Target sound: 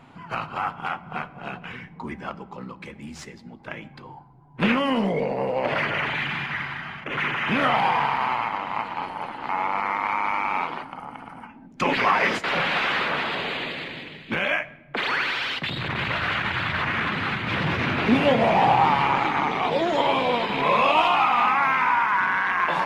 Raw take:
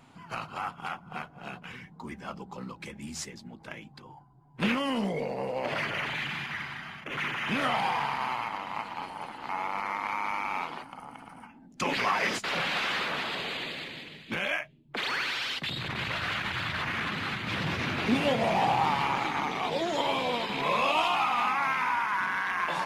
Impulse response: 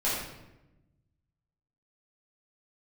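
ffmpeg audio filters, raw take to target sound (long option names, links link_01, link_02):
-filter_complex "[0:a]asettb=1/sr,asplit=3[link_01][link_02][link_03];[link_01]atrim=end=2.294[link_04];[link_02]atrim=start=2.29:end=3.67,asetpts=PTS-STARTPTS,afade=type=in:duration=0.004:curve=qsin,afade=type=out:start_time=1.376:duration=0.004:curve=qsin,aeval=exprs='0.075*(cos(1*acos(clip(val(0)/0.075,-1,1)))-cos(1*PI/2))+0.00944*(cos(3*acos(clip(val(0)/0.075,-1,1)))-cos(3*PI/2))':channel_layout=same[link_05];[link_03]atrim=start=3.666[link_06];[link_04][link_05]acrossfade=duration=0.004:curve1=hsin:curve2=qsin[link_07];[link_07][link_06]acrossfade=duration=0.004:curve1=qsin:curve2=hsin,bass=frequency=250:gain=-1,treble=frequency=4000:gain=-12,asplit=2[link_08][link_09];[1:a]atrim=start_sample=2205,asetrate=40572,aresample=44100[link_10];[link_09][link_10]afir=irnorm=-1:irlink=0,volume=-26dB[link_11];[link_08][link_11]amix=inputs=2:normalize=0,volume=7dB"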